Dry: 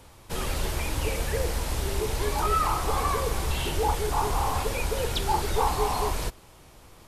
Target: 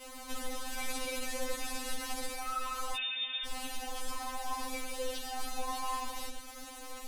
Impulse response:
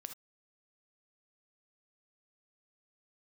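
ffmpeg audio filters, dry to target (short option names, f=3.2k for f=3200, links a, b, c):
-filter_complex "[0:a]adynamicequalizer=threshold=0.00708:dfrequency=380:dqfactor=1.1:tfrequency=380:tqfactor=1.1:attack=5:release=100:ratio=0.375:range=2.5:mode=cutabove:tftype=bell,asplit=2[a][b];[b]acompressor=threshold=-33dB:ratio=6,volume=2.5dB[c];[a][c]amix=inputs=2:normalize=0,alimiter=limit=-22dB:level=0:latency=1:release=92,asettb=1/sr,asplit=3[d][e][f];[d]atrim=end=0.774[g];[e]atrim=start=0.77:end=2.27,asetpts=PTS-STARTPTS,afade=t=in:d=0.004:c=qsin,afade=t=out:st=1.496:d=0.004:c=qsin,acontrast=88[h];[f]atrim=start=2.266[i];[g][h]acrossfade=d=0.004:c1=hsin:c2=qsin[j];[j][i]acrossfade=d=0.004:c1=qsin:c2=hsin,asoftclip=type=tanh:threshold=-29.5dB,acrusher=bits=6:mix=0:aa=0.000001[k];[1:a]atrim=start_sample=2205,asetrate=23373,aresample=44100[l];[k][l]afir=irnorm=-1:irlink=0,asettb=1/sr,asplit=3[m][n][o];[m]atrim=end=2.964[p];[n]atrim=start=2.96:end=3.46,asetpts=PTS-STARTPTS,afade=t=in:d=0.004:c=qsin,afade=t=out:st=0.496:d=0.004:c=qsin,lowpass=f=3.1k:t=q:w=0.5098,lowpass=f=3.1k:t=q:w=0.6013,lowpass=f=3.1k:t=q:w=0.9,lowpass=f=3.1k:t=q:w=2.563,afreqshift=-3700[q];[o]atrim=start=3.456[r];[p][q]acrossfade=d=0.004:c1=hsin:c2=qsin[s];[s][r]acrossfade=d=0.004:c1=qsin:c2=hsin,afftfilt=real='re*3.46*eq(mod(b,12),0)':imag='im*3.46*eq(mod(b,12),0)':win_size=2048:overlap=0.75"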